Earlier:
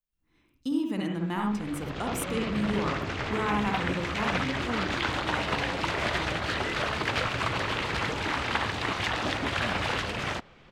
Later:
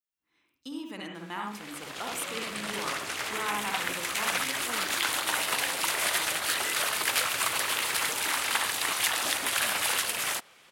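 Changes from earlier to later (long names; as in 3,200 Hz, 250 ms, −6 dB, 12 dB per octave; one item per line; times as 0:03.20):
background: remove high-frequency loss of the air 170 metres
master: add high-pass filter 950 Hz 6 dB per octave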